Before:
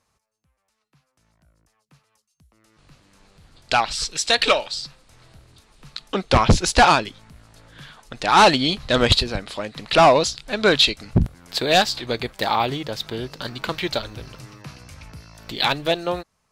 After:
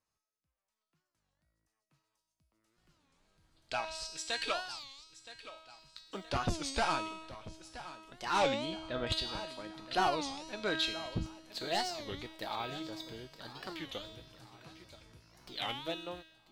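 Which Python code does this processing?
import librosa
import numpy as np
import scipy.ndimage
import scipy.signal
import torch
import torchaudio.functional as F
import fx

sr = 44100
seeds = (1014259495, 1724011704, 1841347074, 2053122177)

y = fx.law_mismatch(x, sr, coded='A', at=(4.8, 6.21))
y = fx.air_absorb(y, sr, metres=270.0, at=(8.55, 9.07))
y = fx.comb_fb(y, sr, f0_hz=320.0, decay_s=1.0, harmonics='all', damping=0.0, mix_pct=90)
y = fx.echo_feedback(y, sr, ms=971, feedback_pct=46, wet_db=-15)
y = fx.record_warp(y, sr, rpm=33.33, depth_cents=250.0)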